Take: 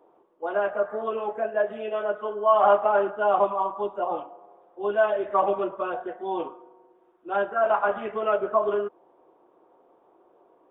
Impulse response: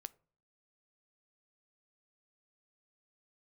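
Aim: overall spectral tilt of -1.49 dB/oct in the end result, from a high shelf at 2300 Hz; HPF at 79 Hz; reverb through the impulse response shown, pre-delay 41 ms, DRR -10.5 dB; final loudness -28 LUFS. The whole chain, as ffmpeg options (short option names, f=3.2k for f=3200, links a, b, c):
-filter_complex "[0:a]highpass=79,highshelf=f=2.3k:g=9,asplit=2[a][b];[1:a]atrim=start_sample=2205,adelay=41[c];[b][c]afir=irnorm=-1:irlink=0,volume=15.5dB[d];[a][d]amix=inputs=2:normalize=0,volume=-14.5dB"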